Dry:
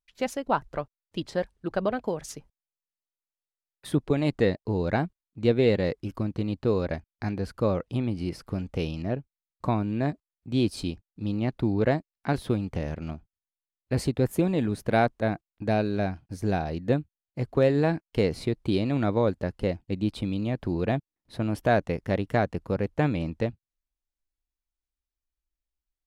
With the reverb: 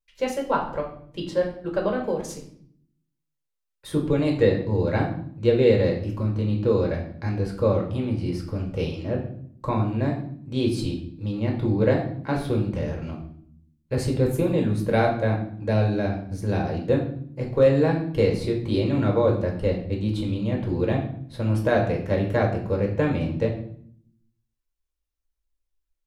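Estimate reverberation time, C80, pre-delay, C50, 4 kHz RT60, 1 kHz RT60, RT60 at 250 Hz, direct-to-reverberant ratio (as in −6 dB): 0.60 s, 11.0 dB, 4 ms, 7.0 dB, 0.50 s, 0.55 s, 1.0 s, 0.0 dB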